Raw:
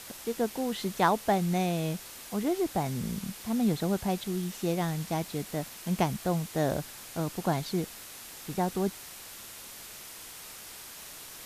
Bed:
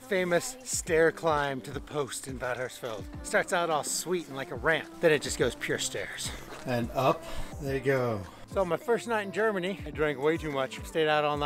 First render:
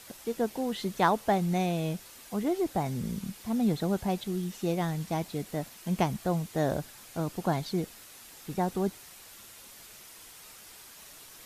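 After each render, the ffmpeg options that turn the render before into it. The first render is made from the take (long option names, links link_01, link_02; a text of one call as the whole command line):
ffmpeg -i in.wav -af "afftdn=noise_reduction=6:noise_floor=-46" out.wav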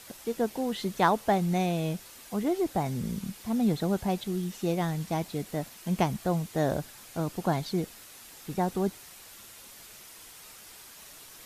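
ffmpeg -i in.wav -af "volume=1dB" out.wav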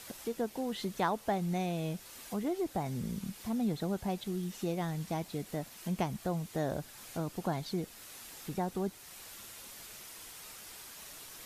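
ffmpeg -i in.wav -af "acompressor=threshold=-41dB:ratio=1.5" out.wav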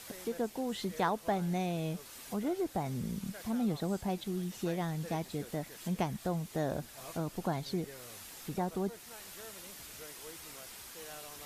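ffmpeg -i in.wav -i bed.wav -filter_complex "[1:a]volume=-24.5dB[link_01];[0:a][link_01]amix=inputs=2:normalize=0" out.wav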